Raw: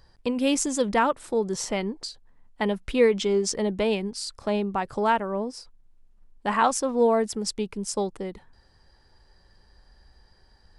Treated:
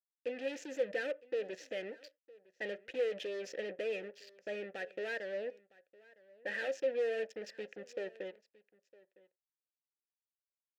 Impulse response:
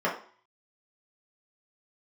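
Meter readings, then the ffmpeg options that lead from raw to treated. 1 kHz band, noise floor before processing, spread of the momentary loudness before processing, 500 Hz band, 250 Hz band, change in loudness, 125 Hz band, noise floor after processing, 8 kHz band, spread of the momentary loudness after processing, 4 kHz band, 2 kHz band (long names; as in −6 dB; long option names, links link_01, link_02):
−27.5 dB, −59 dBFS, 11 LU, −11.5 dB, −23.0 dB, −13.5 dB, below −25 dB, below −85 dBFS, −26.5 dB, 12 LU, −16.0 dB, −8.0 dB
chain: -filter_complex "[0:a]equalizer=frequency=315:width_type=o:width=0.33:gain=10,equalizer=frequency=1000:width_type=o:width=0.33:gain=-9,equalizer=frequency=1600:width_type=o:width=0.33:gain=10,aresample=16000,asoftclip=type=tanh:threshold=-22.5dB,aresample=44100,acrusher=bits=4:mix=0:aa=0.5,asplit=3[link_01][link_02][link_03];[link_01]bandpass=frequency=530:width_type=q:width=8,volume=0dB[link_04];[link_02]bandpass=frequency=1840:width_type=q:width=8,volume=-6dB[link_05];[link_03]bandpass=frequency=2480:width_type=q:width=8,volume=-9dB[link_06];[link_04][link_05][link_06]amix=inputs=3:normalize=0,aecho=1:1:959:0.075,asplit=2[link_07][link_08];[1:a]atrim=start_sample=2205,atrim=end_sample=4410[link_09];[link_08][link_09]afir=irnorm=-1:irlink=0,volume=-28dB[link_10];[link_07][link_10]amix=inputs=2:normalize=0,adynamicequalizer=threshold=0.00251:dfrequency=2200:dqfactor=0.7:tfrequency=2200:tqfactor=0.7:attack=5:release=100:ratio=0.375:range=2.5:mode=boostabove:tftype=highshelf,volume=-1dB"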